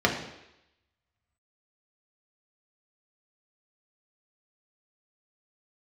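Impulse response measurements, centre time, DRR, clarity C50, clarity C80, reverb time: 26 ms, −1.0 dB, 7.0 dB, 9.5 dB, 0.85 s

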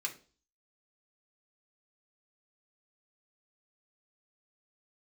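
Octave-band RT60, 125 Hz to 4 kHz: 0.45, 0.50, 0.45, 0.35, 0.30, 0.40 seconds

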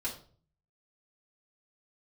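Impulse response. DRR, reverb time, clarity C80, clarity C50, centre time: −7.5 dB, 0.45 s, 13.5 dB, 9.5 dB, 18 ms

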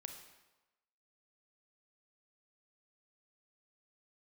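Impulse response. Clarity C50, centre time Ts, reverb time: 6.5 dB, 26 ms, 1.1 s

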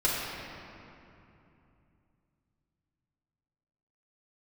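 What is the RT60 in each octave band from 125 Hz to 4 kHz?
4.2, 3.6, 2.9, 2.8, 2.4, 1.7 seconds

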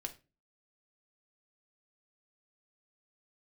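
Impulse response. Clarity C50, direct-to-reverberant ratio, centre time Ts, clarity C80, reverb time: 15.0 dB, 4.5 dB, 6 ms, 21.5 dB, 0.30 s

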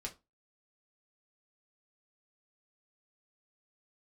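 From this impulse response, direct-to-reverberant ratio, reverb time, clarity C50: −1.0 dB, 0.25 s, 16.5 dB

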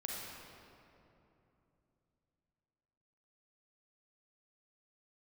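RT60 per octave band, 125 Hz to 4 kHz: 4.1, 3.7, 3.2, 2.8, 2.2, 1.6 seconds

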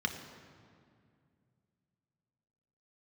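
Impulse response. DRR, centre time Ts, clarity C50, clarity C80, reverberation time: 4.0 dB, 28 ms, 8.0 dB, 9.0 dB, 2.3 s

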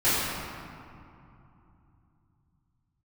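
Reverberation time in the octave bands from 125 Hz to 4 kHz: 4.9, 3.8, 2.6, 2.9, 2.1, 1.3 seconds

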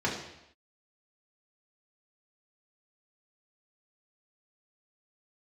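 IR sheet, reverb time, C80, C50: non-exponential decay, 8.0 dB, 5.0 dB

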